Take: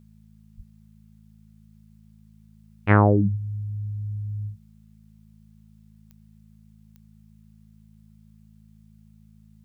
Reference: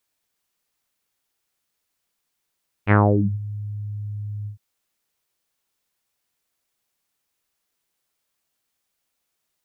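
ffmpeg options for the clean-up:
-filter_complex "[0:a]adeclick=t=4,bandreject=f=53.7:t=h:w=4,bandreject=f=107.4:t=h:w=4,bandreject=f=161.1:t=h:w=4,bandreject=f=214.8:t=h:w=4,asplit=3[a][b][c];[a]afade=t=out:st=0.56:d=0.02[d];[b]highpass=f=140:w=0.5412,highpass=f=140:w=1.3066,afade=t=in:st=0.56:d=0.02,afade=t=out:st=0.68:d=0.02[e];[c]afade=t=in:st=0.68:d=0.02[f];[d][e][f]amix=inputs=3:normalize=0"

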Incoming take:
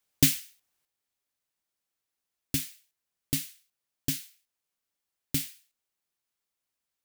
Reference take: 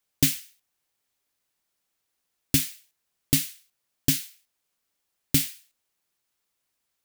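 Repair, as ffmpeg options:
-af "asetnsamples=n=441:p=0,asendcmd='0.85 volume volume 7.5dB',volume=0dB"

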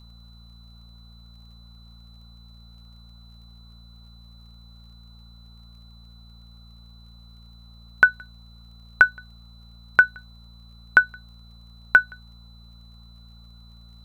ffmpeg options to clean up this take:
-af "adeclick=t=4,bandreject=f=57.3:t=h:w=4,bandreject=f=114.6:t=h:w=4,bandreject=f=171.9:t=h:w=4,bandreject=f=229.2:t=h:w=4,bandreject=f=4k:w=30,afftdn=nr=30:nf=-48"

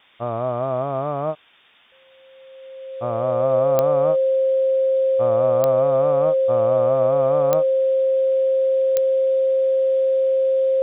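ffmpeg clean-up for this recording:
-af "adeclick=t=4,bandreject=f=530:w=30,afftdn=nr=18:nf=-49"

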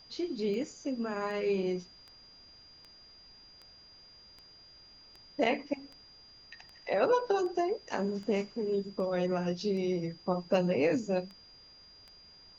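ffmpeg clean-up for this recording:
-af "adeclick=t=4,bandreject=f=4.8k:w=30,agate=range=-21dB:threshold=-48dB"

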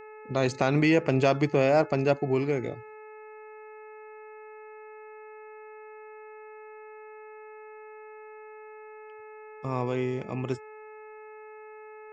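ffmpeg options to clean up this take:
-af "bandreject=f=430:t=h:w=4,bandreject=f=860:t=h:w=4,bandreject=f=1.29k:t=h:w=4,bandreject=f=1.72k:t=h:w=4,bandreject=f=2.15k:t=h:w=4,bandreject=f=2.58k:t=h:w=4"

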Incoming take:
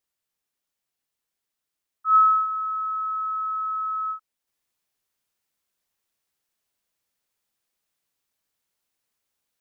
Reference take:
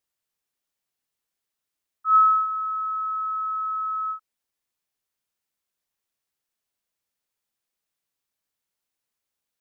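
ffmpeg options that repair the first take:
-af "asetnsamples=n=441:p=0,asendcmd='4.47 volume volume -4dB',volume=0dB"

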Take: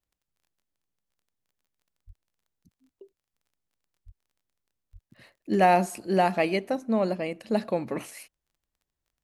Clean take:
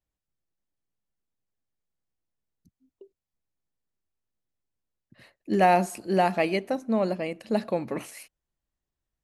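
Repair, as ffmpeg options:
-filter_complex "[0:a]adeclick=t=4,asplit=3[a][b][c];[a]afade=t=out:st=2.06:d=0.02[d];[b]highpass=f=140:w=0.5412,highpass=f=140:w=1.3066,afade=t=in:st=2.06:d=0.02,afade=t=out:st=2.18:d=0.02[e];[c]afade=t=in:st=2.18:d=0.02[f];[d][e][f]amix=inputs=3:normalize=0,asplit=3[g][h][i];[g]afade=t=out:st=4.05:d=0.02[j];[h]highpass=f=140:w=0.5412,highpass=f=140:w=1.3066,afade=t=in:st=4.05:d=0.02,afade=t=out:st=4.17:d=0.02[k];[i]afade=t=in:st=4.17:d=0.02[l];[j][k][l]amix=inputs=3:normalize=0,asplit=3[m][n][o];[m]afade=t=out:st=4.92:d=0.02[p];[n]highpass=f=140:w=0.5412,highpass=f=140:w=1.3066,afade=t=in:st=4.92:d=0.02,afade=t=out:st=5.04:d=0.02[q];[o]afade=t=in:st=5.04:d=0.02[r];[p][q][r]amix=inputs=3:normalize=0"

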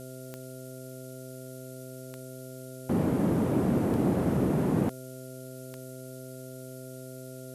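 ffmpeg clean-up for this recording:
-af "adeclick=t=4,bandreject=f=129.5:t=h:w=4,bandreject=f=259:t=h:w=4,bandreject=f=388.5:t=h:w=4,bandreject=f=518:t=h:w=4,bandreject=f=647.5:t=h:w=4,bandreject=f=1.4k:w=30,afftdn=nr=30:nf=-43"

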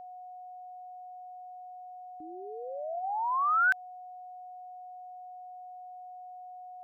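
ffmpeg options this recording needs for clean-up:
-af "bandreject=f=730:w=30"

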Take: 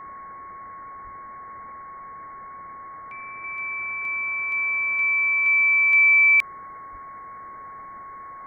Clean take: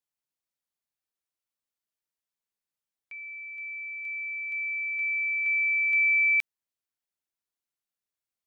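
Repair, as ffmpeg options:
-filter_complex "[0:a]bandreject=f=1.1k:w=30,asplit=3[a][b][c];[a]afade=t=out:st=1.03:d=0.02[d];[b]highpass=f=140:w=0.5412,highpass=f=140:w=1.3066,afade=t=in:st=1.03:d=0.02,afade=t=out:st=1.15:d=0.02[e];[c]afade=t=in:st=1.15:d=0.02[f];[d][e][f]amix=inputs=3:normalize=0,asplit=3[g][h][i];[g]afade=t=out:st=6.91:d=0.02[j];[h]highpass=f=140:w=0.5412,highpass=f=140:w=1.3066,afade=t=in:st=6.91:d=0.02,afade=t=out:st=7.03:d=0.02[k];[i]afade=t=in:st=7.03:d=0.02[l];[j][k][l]amix=inputs=3:normalize=0,afwtdn=0.01,asetnsamples=n=441:p=0,asendcmd='3.44 volume volume -7dB',volume=0dB"

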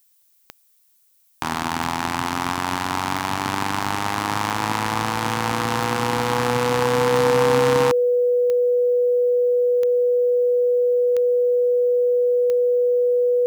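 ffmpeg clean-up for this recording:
-af "adeclick=t=4,bandreject=f=490:w=30,agate=range=-21dB:threshold=-51dB"

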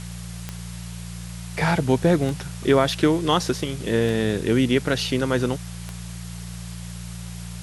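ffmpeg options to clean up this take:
-af "adeclick=t=4,bandreject=f=58.1:t=h:w=4,bandreject=f=116.2:t=h:w=4,bandreject=f=174.3:t=h:w=4,afftdn=nr=30:nf=-35"

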